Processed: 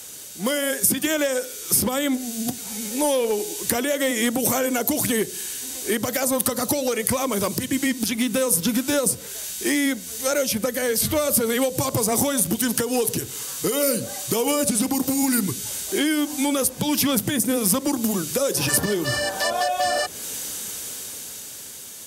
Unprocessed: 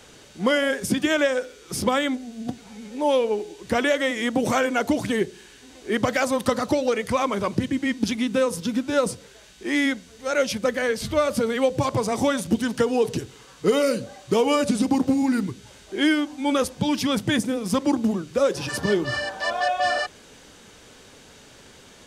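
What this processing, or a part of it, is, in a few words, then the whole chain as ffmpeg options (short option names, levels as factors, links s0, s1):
FM broadcast chain: -filter_complex "[0:a]highpass=61,dynaudnorm=f=330:g=9:m=3.76,acrossover=split=720|2800[s0][s1][s2];[s0]acompressor=threshold=0.158:ratio=4[s3];[s1]acompressor=threshold=0.0398:ratio=4[s4];[s2]acompressor=threshold=0.0126:ratio=4[s5];[s3][s4][s5]amix=inputs=3:normalize=0,aemphasis=mode=production:type=50fm,alimiter=limit=0.251:level=0:latency=1:release=263,asoftclip=type=hard:threshold=0.188,lowpass=f=15000:w=0.5412,lowpass=f=15000:w=1.3066,aemphasis=mode=production:type=50fm,volume=0.891"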